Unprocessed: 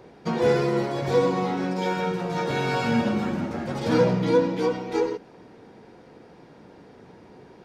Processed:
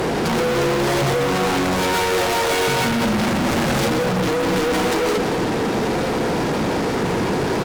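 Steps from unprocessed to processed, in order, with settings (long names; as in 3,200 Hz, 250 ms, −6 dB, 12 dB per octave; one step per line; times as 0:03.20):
0:01.94–0:02.68: high-pass filter 320 Hz 24 dB per octave
compressor whose output falls as the input rises −30 dBFS, ratio −1
fuzz pedal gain 49 dB, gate −57 dBFS
slap from a distant wall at 30 metres, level −9 dB
level −5.5 dB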